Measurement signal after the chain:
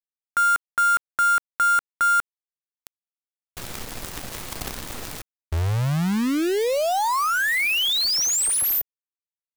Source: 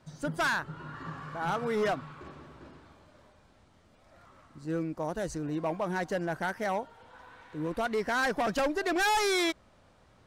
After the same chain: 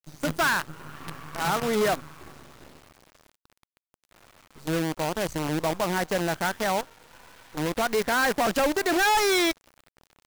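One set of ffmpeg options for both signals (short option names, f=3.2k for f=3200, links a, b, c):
-af "acrusher=bits=6:dc=4:mix=0:aa=0.000001,volume=4.5dB"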